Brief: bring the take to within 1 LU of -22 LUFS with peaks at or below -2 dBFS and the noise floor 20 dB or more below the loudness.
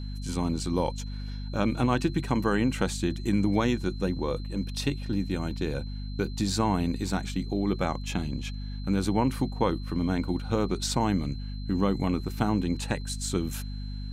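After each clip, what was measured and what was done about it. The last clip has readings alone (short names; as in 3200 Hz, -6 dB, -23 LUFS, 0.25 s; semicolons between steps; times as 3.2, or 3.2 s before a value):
hum 50 Hz; harmonics up to 250 Hz; hum level -33 dBFS; steady tone 4100 Hz; tone level -49 dBFS; loudness -29.0 LUFS; peak -9.5 dBFS; loudness target -22.0 LUFS
-> de-hum 50 Hz, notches 5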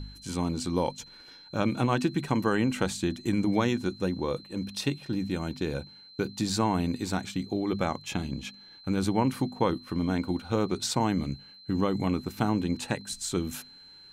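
hum none; steady tone 4100 Hz; tone level -49 dBFS
-> notch 4100 Hz, Q 30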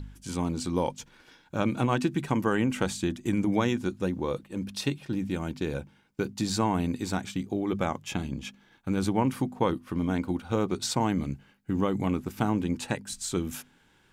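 steady tone none; loudness -29.5 LUFS; peak -10.0 dBFS; loudness target -22.0 LUFS
-> gain +7.5 dB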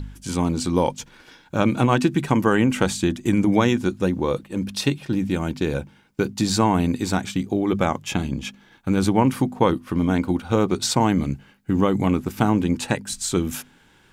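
loudness -22.0 LUFS; peak -2.5 dBFS; noise floor -55 dBFS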